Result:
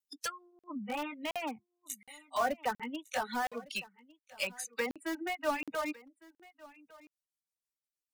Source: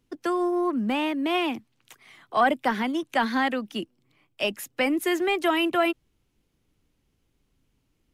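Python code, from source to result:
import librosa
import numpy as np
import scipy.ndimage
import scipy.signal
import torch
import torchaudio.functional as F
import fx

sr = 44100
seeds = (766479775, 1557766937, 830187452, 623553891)

p1 = fx.pitch_glide(x, sr, semitones=-2.5, runs='starting unshifted')
p2 = fx.high_shelf(p1, sr, hz=3000.0, db=9.0)
p3 = fx.env_lowpass_down(p2, sr, base_hz=1300.0, full_db=-22.5)
p4 = fx.bass_treble(p3, sr, bass_db=-14, treble_db=15)
p5 = fx.noise_reduce_blind(p4, sr, reduce_db=27)
p6 = fx.vibrato(p5, sr, rate_hz=0.48, depth_cents=13.0)
p7 = (np.mod(10.0 ** (24.5 / 20.0) * p6 + 1.0, 2.0) - 1.0) / 10.0 ** (24.5 / 20.0)
p8 = p6 + F.gain(torch.from_numpy(p7), -9.0).numpy()
p9 = fx.dereverb_blind(p8, sr, rt60_s=1.1)
p10 = p9 + fx.echo_single(p9, sr, ms=1156, db=-21.5, dry=0)
p11 = fx.buffer_crackle(p10, sr, first_s=0.59, period_s=0.72, block=2048, kind='zero')
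y = F.gain(torch.from_numpy(p11), -6.5).numpy()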